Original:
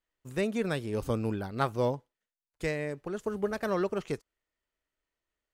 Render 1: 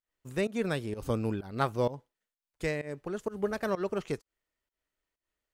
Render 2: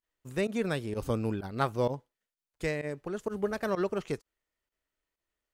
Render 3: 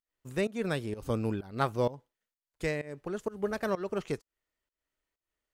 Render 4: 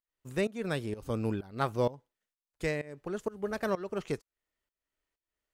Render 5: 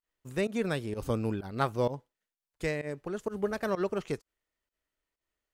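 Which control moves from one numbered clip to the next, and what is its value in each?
pump, release: 165, 61, 264, 399, 100 ms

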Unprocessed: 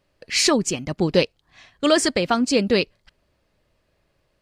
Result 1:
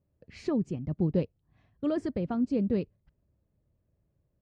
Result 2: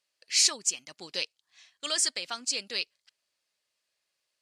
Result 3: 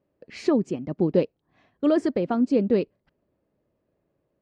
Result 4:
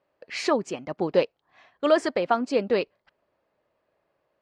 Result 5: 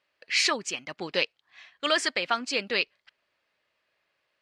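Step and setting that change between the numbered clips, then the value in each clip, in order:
band-pass, frequency: 100, 7400, 290, 770, 2200 Hz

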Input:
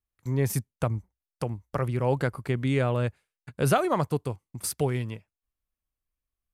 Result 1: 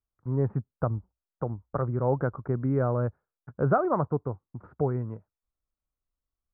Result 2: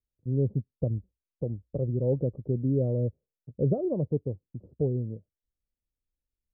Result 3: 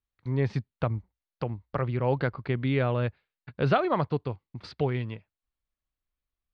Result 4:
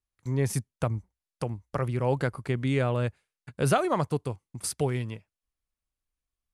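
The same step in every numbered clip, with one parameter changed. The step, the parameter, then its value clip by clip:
elliptic low-pass, frequency: 1400, 540, 4300, 11000 Hz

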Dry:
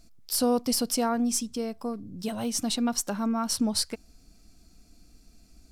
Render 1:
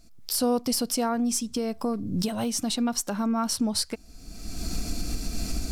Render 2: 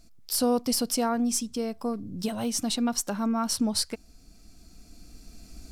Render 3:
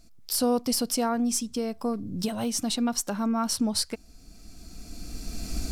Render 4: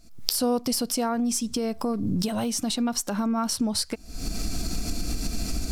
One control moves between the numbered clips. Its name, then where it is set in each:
recorder AGC, rising by: 34, 5.5, 14, 83 dB/s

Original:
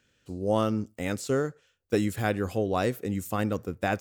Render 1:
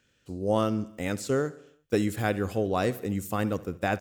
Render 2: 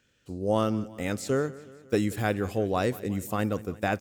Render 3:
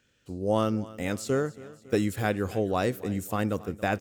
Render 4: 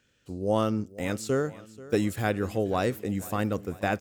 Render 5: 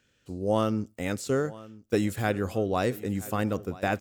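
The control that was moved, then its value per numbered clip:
feedback echo, time: 70, 180, 278, 485, 978 ms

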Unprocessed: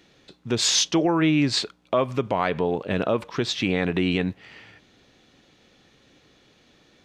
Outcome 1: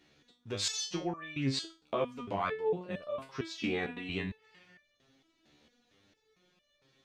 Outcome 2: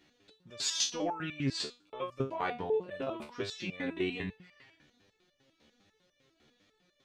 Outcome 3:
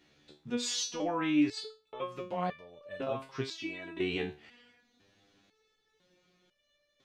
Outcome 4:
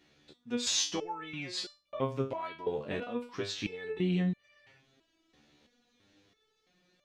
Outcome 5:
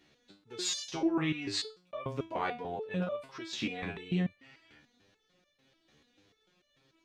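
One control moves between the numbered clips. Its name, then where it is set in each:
stepped resonator, rate: 4.4, 10, 2, 3, 6.8 Hz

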